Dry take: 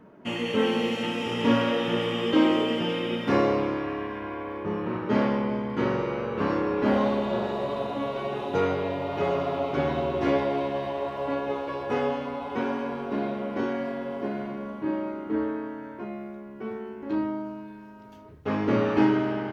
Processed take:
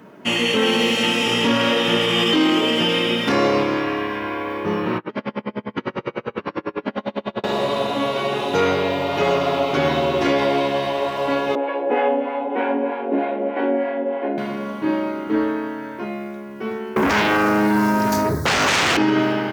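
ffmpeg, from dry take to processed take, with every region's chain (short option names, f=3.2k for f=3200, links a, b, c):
-filter_complex "[0:a]asettb=1/sr,asplit=3[a][b][c];[a]atrim=end=2.084[d];[b]atrim=start=2.08:end=2.61,asetpts=PTS-STARTPTS,afade=t=in:d=0.004:c=qsin,afade=t=out:st=0.526:d=0.004:c=qsin,bandreject=f=520:w=12,asplit=2[e][f];[f]adelay=23,volume=-2.5dB[g];[e][g]amix=inputs=2:normalize=0,atrim=end_sample=23373[h];[c]atrim=start=2.606[i];[d][h]acrossfade=d=0.004:c1=hsin:c2=qsin[j];[j][i]acrossfade=d=0.004:c1=qsin:c2=hsin,asettb=1/sr,asplit=3[k][l][m];[k]atrim=end=4.984[n];[l]atrim=start=4.98:end=7.44,asetpts=PTS-STARTPTS,afade=t=in:d=0.004:c=qsin,afade=t=out:st=2.456:d=0.004:c=qsin,lowpass=3.3k,acompressor=threshold=-24dB:ratio=4:attack=3.2:release=140:knee=1:detection=peak,aeval=exprs='val(0)*pow(10,-36*(0.5-0.5*cos(2*PI*10*n/s))/20)':c=same[o];[m]atrim=start=7.436[p];[n][o]acrossfade=d=0.004:c1=hsin:c2=qsin[q];[q][p]acrossfade=d=0.004:c1=qsin:c2=hsin,asettb=1/sr,asplit=3[r][s][t];[r]atrim=end=11.554[u];[s]atrim=start=11.55:end=14.38,asetpts=PTS-STARTPTS,afade=t=in:d=0.004:c=qsin,afade=t=out:st=2.826:d=0.004:c=qsin,highpass=f=250:w=0.5412,highpass=f=250:w=1.3066,equalizer=f=290:t=q:w=4:g=8,equalizer=f=530:t=q:w=4:g=7,equalizer=f=790:t=q:w=4:g=8,equalizer=f=1.2k:t=q:w=4:g=-8,lowpass=f=2.5k:w=0.5412,lowpass=f=2.5k:w=1.3066,acrossover=split=660[v][w];[v]aeval=exprs='val(0)*(1-0.7/2+0.7/2*cos(2*PI*3.2*n/s))':c=same[x];[w]aeval=exprs='val(0)*(1-0.7/2-0.7/2*cos(2*PI*3.2*n/s))':c=same[y];[x][y]amix=inputs=2:normalize=0[z];[t]atrim=start=14.376[aa];[u][z]acrossfade=d=0.004:c1=hsin:c2=qsin[ab];[ab][aa]acrossfade=d=0.004:c1=qsin:c2=hsin,asettb=1/sr,asplit=3[ac][ad][ae];[ac]atrim=end=16.964[af];[ad]atrim=start=16.96:end=18.97,asetpts=PTS-STARTPTS,afade=t=in:d=0.004:c=qsin,afade=t=out:st=2.006:d=0.004:c=qsin,acrossover=split=160|3000[ag][ah][ai];[ah]acompressor=threshold=-39dB:ratio=2.5:attack=3.2:release=140:knee=2.83:detection=peak[aj];[ag][aj][ai]amix=inputs=3:normalize=0,asuperstop=centerf=2800:order=4:qfactor=1.1,aeval=exprs='0.0944*sin(PI/2*8.91*val(0)/0.0944)':c=same[ak];[ae]atrim=start=18.966[al];[af][ak]acrossfade=d=0.004:c1=hsin:c2=qsin[am];[am][al]acrossfade=d=0.004:c1=qsin:c2=hsin,highpass=96,highshelf=f=2.3k:g=12,alimiter=level_in=15dB:limit=-1dB:release=50:level=0:latency=1,volume=-8dB"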